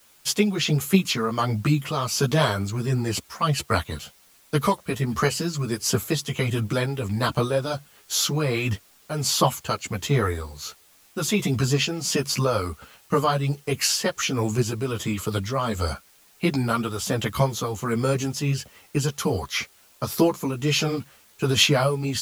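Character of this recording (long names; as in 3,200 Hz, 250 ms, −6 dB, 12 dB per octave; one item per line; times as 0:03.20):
tremolo triangle 1.4 Hz, depth 55%
a quantiser's noise floor 10 bits, dither triangular
a shimmering, thickened sound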